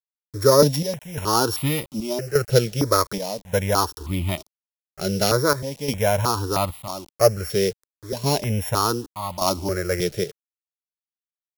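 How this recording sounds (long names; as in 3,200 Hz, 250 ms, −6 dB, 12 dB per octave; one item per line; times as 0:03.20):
a buzz of ramps at a fixed pitch in blocks of 8 samples
chopped level 0.85 Hz, depth 65%, duty 70%
a quantiser's noise floor 8 bits, dither none
notches that jump at a steady rate 3.2 Hz 280–1,600 Hz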